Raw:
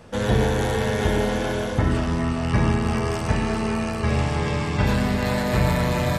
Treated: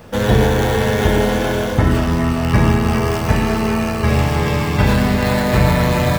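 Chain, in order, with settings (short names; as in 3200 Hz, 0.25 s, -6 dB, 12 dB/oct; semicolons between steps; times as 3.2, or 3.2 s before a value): median filter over 5 samples; high shelf 10000 Hz +10.5 dB; gain +6.5 dB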